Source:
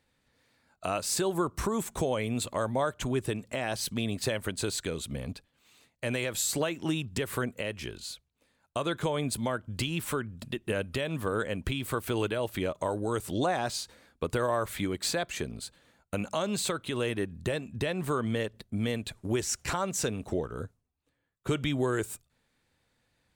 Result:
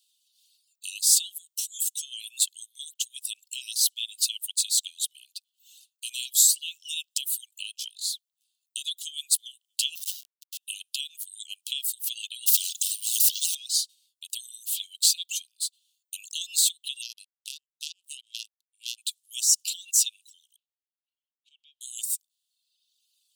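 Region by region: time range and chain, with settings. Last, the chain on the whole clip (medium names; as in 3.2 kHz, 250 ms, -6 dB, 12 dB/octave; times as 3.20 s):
9.95–10.58 s: doubling 22 ms -14 dB + Schmitt trigger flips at -32.5 dBFS
12.46–13.55 s: companding laws mixed up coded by mu + spectrum-flattening compressor 4:1
17.02–18.98 s: low-pass 11 kHz + power-law waveshaper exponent 3
20.56–21.81 s: companding laws mixed up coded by mu + compression 10:1, threshold -31 dBFS + Butterworth band-pass 1 kHz, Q 1.1
whole clip: steep high-pass 2.8 kHz 96 dB/octave; reverb removal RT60 1.1 s; tilt EQ +3 dB/octave; trim +4 dB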